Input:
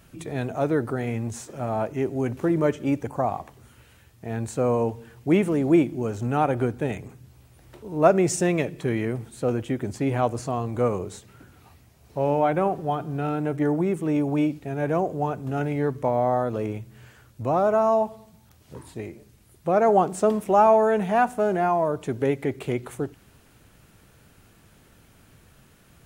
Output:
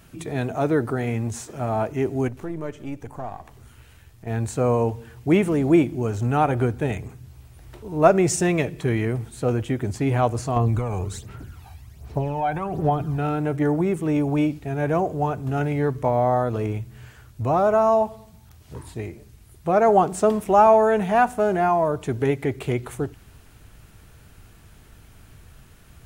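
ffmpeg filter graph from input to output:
-filter_complex "[0:a]asettb=1/sr,asplit=3[s0][s1][s2];[s0]atrim=end=2.284[s3];[s1]atrim=start=2.28:end=4.27,asetpts=PTS-STARTPTS,afade=t=in:d=0.004:c=qsin,afade=t=out:st=1.986:d=0.004:c=qsin,aeval=exprs='if(lt(val(0),0),0.708*val(0),val(0))':c=same,acompressor=threshold=0.00447:ratio=1.5:attack=3.2:release=140:knee=1:detection=peak[s4];[s2]atrim=start=4.266[s5];[s3][s4]acrossfade=d=0.004:c1=hsin:c2=qsin[s6];[s6][s5]acrossfade=d=0.004:c1=qsin:c2=hsin,asettb=1/sr,asplit=3[s7][s8][s9];[s7]atrim=end=10.564[s10];[s8]atrim=start=10.56:end=13.18,asetpts=PTS-STARTPTS,afade=t=in:d=0.004:c=qsin,afade=t=out:st=2.616:d=0.004:c=qsin,acompressor=threshold=0.0631:ratio=5:attack=3.2:release=140:knee=1:detection=peak,aphaser=in_gain=1:out_gain=1:delay=1.3:decay=0.57:speed=1.3:type=sinusoidal[s11];[s9]atrim=start=13.176[s12];[s10][s11]acrossfade=d=0.004:c1=hsin:c2=qsin[s13];[s13][s12]acrossfade=d=0.004:c1=qsin:c2=hsin,bandreject=f=540:w=12,asubboost=boost=2.5:cutoff=110,volume=1.41"

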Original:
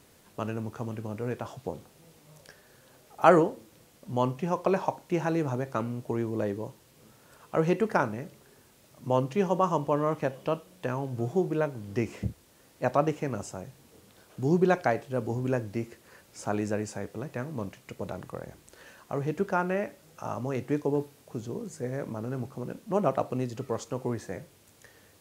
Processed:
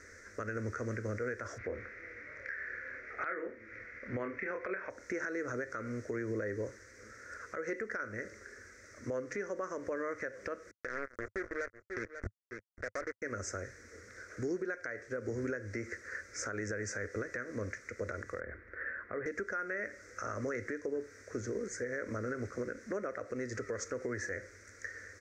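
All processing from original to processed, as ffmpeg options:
-filter_complex "[0:a]asettb=1/sr,asplit=3[s0][s1][s2];[s0]atrim=end=1.584[s3];[s1]atrim=start=1.58:end=4.9,asetpts=PTS-STARTPTS,afade=t=in:d=0.004:c=qsin,afade=t=out:st=3.316:d=0.004:c=qsin,lowpass=f=2300:t=q:w=3.6,asplit=2[s4][s5];[s5]adelay=27,volume=0.531[s6];[s4][s6]amix=inputs=2:normalize=0,atrim=end_sample=146412[s7];[s2]atrim=start=4.896[s8];[s3][s7]acrossfade=d=0.004:c1=hsin:c2=qsin[s9];[s9][s8]acrossfade=d=0.004:c1=qsin:c2=hsin,asettb=1/sr,asplit=3[s10][s11][s12];[s10]atrim=end=10.714[s13];[s11]atrim=start=10.71:end=13.22,asetpts=PTS-STARTPTS,afade=t=in:d=0.004:c=qsin,afade=t=out:st=2.506:d=0.004:c=qsin,equalizer=f=510:w=0.63:g=4,acrusher=bits=3:mix=0:aa=0.5,aecho=1:1:542:0.0631,atrim=end_sample=110691[s14];[s12]atrim=start=13.216[s15];[s13][s14]acrossfade=d=0.004:c1=hsin:c2=qsin[s16];[s16][s15]acrossfade=d=0.004:c1=qsin:c2=hsin,asettb=1/sr,asplit=3[s17][s18][s19];[s17]atrim=end=18.404[s20];[s18]atrim=start=18.4:end=19.26,asetpts=PTS-STARTPTS,afade=t=in:d=0.004:c=qsin,afade=t=out:st=0.856:d=0.004:c=qsin,lowpass=f=2200:w=0.5412,lowpass=f=2200:w=1.3066,acompressor=threshold=0.0112:ratio=1.5:attack=3.2:release=140:knee=1:detection=peak[s21];[s19]atrim=start=19.256[s22];[s20][s21]acrossfade=d=0.004:c1=hsin:c2=qsin[s23];[s23][s22]acrossfade=d=0.004:c1=qsin:c2=hsin,firequalizer=gain_entry='entry(100,0);entry(150,-28);entry(210,-8);entry(510,1);entry(840,-21);entry(1400,9);entry(2000,11);entry(2900,-23);entry(5800,4);entry(11000,-24)':delay=0.05:min_phase=1,acompressor=threshold=0.02:ratio=10,alimiter=level_in=2.66:limit=0.0631:level=0:latency=1:release=121,volume=0.376,volume=1.78"

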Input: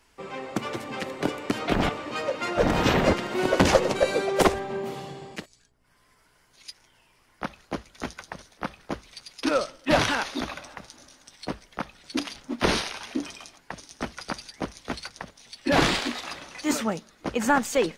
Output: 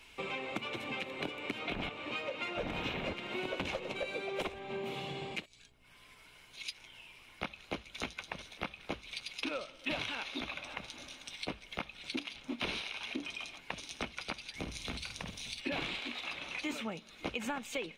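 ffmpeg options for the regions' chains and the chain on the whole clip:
-filter_complex "[0:a]asettb=1/sr,asplit=3[s0][s1][s2];[s0]atrim=end=14.554[s3];[s1]atrim=start=14.55:end=15.61,asetpts=PTS-STARTPTS,afade=t=in:d=0.004:c=qsin,afade=t=out:st=1.056:d=0.004:c=qsin,bass=f=250:g=10,treble=f=4000:g=9,acompressor=threshold=0.0178:ratio=3:attack=3.2:release=140:knee=1:detection=peak,asplit=2[s4][s5];[s5]adelay=50,volume=0.447[s6];[s4][s6]amix=inputs=2:normalize=0,atrim=end_sample=46746[s7];[s2]atrim=start=15.606[s8];[s3][s7]acrossfade=d=0.004:c1=hsin:c2=qsin[s9];[s9][s8]acrossfade=d=0.004:c1=qsin:c2=hsin,superequalizer=12b=3.55:13b=2.82,acompressor=threshold=0.0141:ratio=6,adynamicequalizer=threshold=0.00282:dfrequency=3400:dqfactor=0.7:tfrequency=3400:tqfactor=0.7:attack=5:release=100:ratio=0.375:range=2.5:mode=cutabove:tftype=highshelf,volume=1.12"

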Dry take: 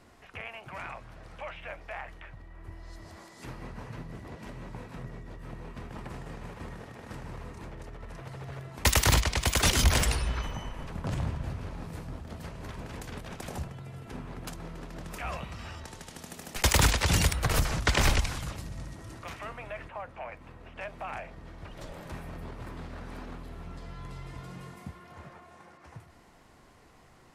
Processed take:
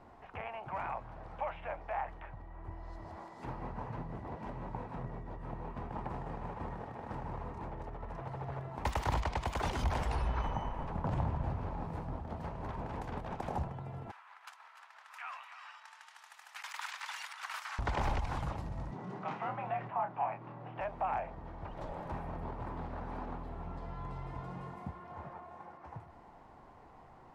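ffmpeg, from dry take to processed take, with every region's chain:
-filter_complex "[0:a]asettb=1/sr,asplit=3[s0][s1][s2];[s0]atrim=end=14.114[s3];[s1]atrim=start=14.11:end=17.79,asetpts=PTS-STARTPTS,afade=t=in:d=0.004:c=qsin,afade=t=out:st=3.676:d=0.004:c=qsin,highpass=f=1300:w=0.5412,highpass=f=1300:w=1.3066,aecho=1:1:297:0.299,atrim=end_sample=162288[s4];[s2]atrim=start=17.786[s5];[s3][s4]acrossfade=d=0.004:c1=hsin:c2=qsin[s6];[s6][s5]acrossfade=d=0.004:c1=qsin:c2=hsin,asettb=1/sr,asplit=3[s7][s8][s9];[s7]atrim=end=18.914[s10];[s8]atrim=start=18.91:end=20.81,asetpts=PTS-STARTPTS,afade=t=in:d=0.004:c=qsin,afade=t=out:st=1.896:d=0.004:c=qsin,lowpass=5900,asplit=2[s11][s12];[s12]adelay=28,volume=0.473[s13];[s11][s13]amix=inputs=2:normalize=0,atrim=end_sample=83790,afreqshift=78[s14];[s9]atrim=start=20.806[s15];[s10][s14]acrossfade=d=0.004:c1=hsin:c2=qsin[s16];[s16][s15]acrossfade=d=0.004:c1=qsin:c2=hsin,alimiter=limit=0.0631:level=0:latency=1:release=84,lowpass=f=1200:p=1,equalizer=f=860:w=1.8:g=10.5,volume=0.891"

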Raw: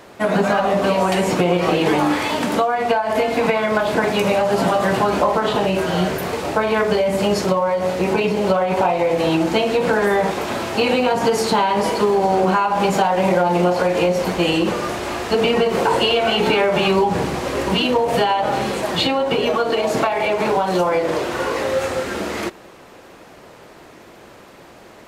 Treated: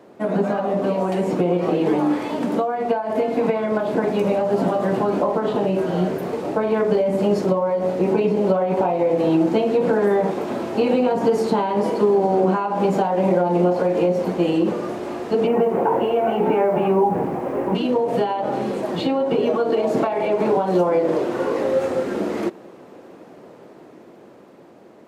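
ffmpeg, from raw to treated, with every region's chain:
-filter_complex "[0:a]asettb=1/sr,asplit=3[s0][s1][s2];[s0]atrim=end=15.474[s3];[s1]atrim=start=15.47:end=17.75,asetpts=PTS-STARTPTS,afade=t=in:d=0.004:c=qsin,afade=t=out:st=2.276:d=0.004:c=qsin,lowpass=f=2500:w=0.5412,lowpass=f=2500:w=1.3066,equalizer=f=810:t=o:w=0.61:g=6.5,acrusher=bits=5:mix=0:aa=0.5[s4];[s2]atrim=start=17.746[s5];[s3][s4]acrossfade=d=0.004:c1=hsin:c2=qsin[s6];[s6][s5]acrossfade=d=0.004:c1=qsin:c2=hsin,highpass=220,tiltshelf=f=750:g=9.5,dynaudnorm=f=460:g=9:m=3.76,volume=0.501"

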